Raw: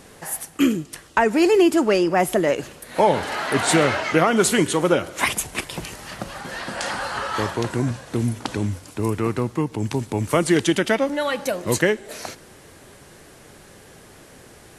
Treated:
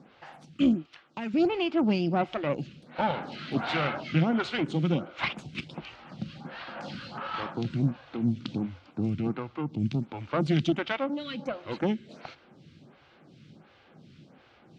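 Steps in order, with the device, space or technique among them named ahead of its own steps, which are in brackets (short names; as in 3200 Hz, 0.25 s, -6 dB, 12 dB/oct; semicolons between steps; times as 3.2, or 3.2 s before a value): vibe pedal into a guitar amplifier (photocell phaser 1.4 Hz; tube stage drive 14 dB, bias 0.7; speaker cabinet 91–4100 Hz, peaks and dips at 150 Hz +9 dB, 220 Hz +5 dB, 430 Hz -9 dB, 620 Hz -5 dB, 1000 Hz -6 dB, 1800 Hz -9 dB); 0.86–1.34 low shelf 440 Hz -10 dB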